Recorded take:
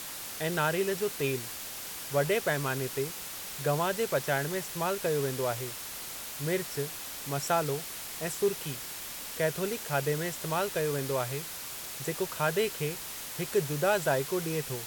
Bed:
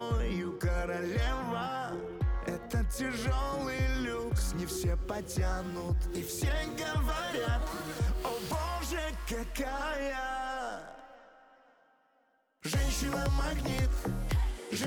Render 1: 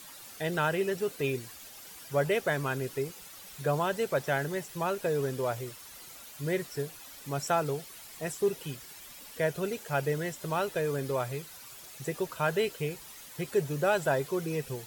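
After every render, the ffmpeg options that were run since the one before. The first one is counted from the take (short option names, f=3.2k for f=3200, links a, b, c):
-af "afftdn=nr=11:nf=-41"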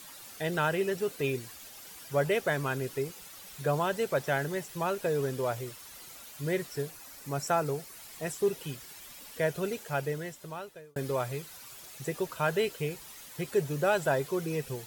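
-filter_complex "[0:a]asettb=1/sr,asplit=3[a][b][c];[a]atrim=end=6.904[d];[b]atrim=start=6.9:end=8,asetpts=PTS-STARTPTS,afade=t=in:d=0.004:c=qsin,afade=t=out:st=1.096:d=0.004:c=qsin,equalizer=f=3.3k:t=o:w=0.51:g=-6[e];[c]atrim=start=7.996[f];[d][e]acrossfade=d=0.004:c1=hsin:c2=qsin[g];[g][f]acrossfade=d=0.004:c1=qsin:c2=hsin,asplit=2[h][i];[h]atrim=end=10.96,asetpts=PTS-STARTPTS,afade=t=out:st=9.73:d=1.23[j];[i]atrim=start=10.96,asetpts=PTS-STARTPTS,afade=t=in:d=0.004:c=hsin[k];[j][k]concat=n=2:v=0:a=1"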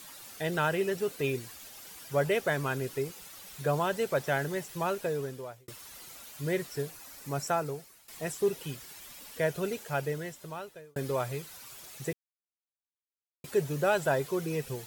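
-filter_complex "[0:a]asplit=5[a][b][c][d][e];[a]atrim=end=5.68,asetpts=PTS-STARTPTS,afade=t=out:st=4.92:d=0.76[f];[b]atrim=start=5.68:end=8.08,asetpts=PTS-STARTPTS,afade=t=in:d=0.004:c=hsin,afade=t=out:st=1.72:d=0.68:silence=0.177828[g];[c]atrim=start=8.08:end=12.13,asetpts=PTS-STARTPTS,afade=t=in:d=0.004:c=hsin:silence=0.177828,afade=t=out:st=4.046:d=0.004:c=hsin[h];[d]atrim=start=12.13:end=13.44,asetpts=PTS-STARTPTS,volume=0[i];[e]atrim=start=13.44,asetpts=PTS-STARTPTS,afade=t=in:d=0.004:c=hsin[j];[f][g][h][i][j]concat=n=5:v=0:a=1"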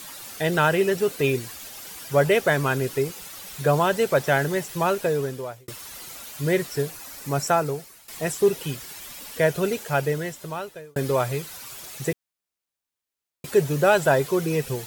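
-af "volume=8.5dB"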